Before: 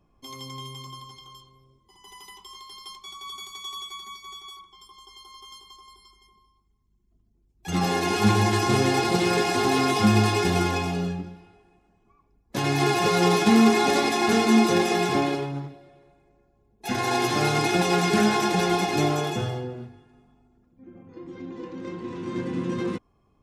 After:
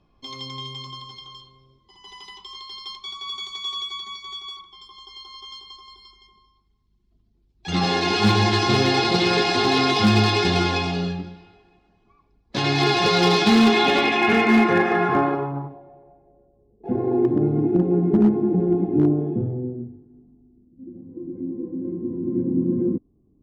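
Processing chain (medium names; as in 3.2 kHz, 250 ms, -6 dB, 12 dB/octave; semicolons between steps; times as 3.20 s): low-pass sweep 4.2 kHz -> 300 Hz, 13.50–17.48 s; overload inside the chain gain 12 dB; trim +2 dB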